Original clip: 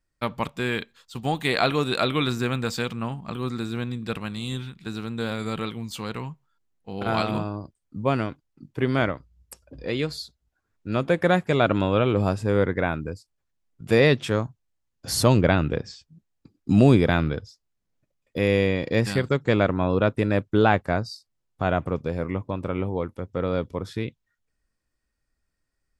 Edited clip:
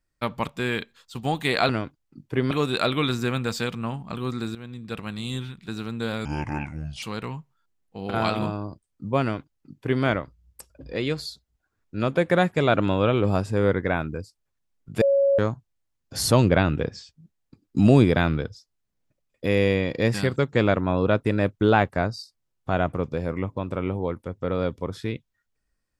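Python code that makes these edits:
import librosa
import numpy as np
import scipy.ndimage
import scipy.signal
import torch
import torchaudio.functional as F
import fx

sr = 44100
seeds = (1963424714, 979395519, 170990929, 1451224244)

y = fx.edit(x, sr, fx.fade_in_from(start_s=3.73, length_s=0.65, floor_db=-14.0),
    fx.speed_span(start_s=5.43, length_s=0.52, speed=0.67),
    fx.duplicate(start_s=8.14, length_s=0.82, to_s=1.69),
    fx.bleep(start_s=13.94, length_s=0.37, hz=555.0, db=-16.0), tone=tone)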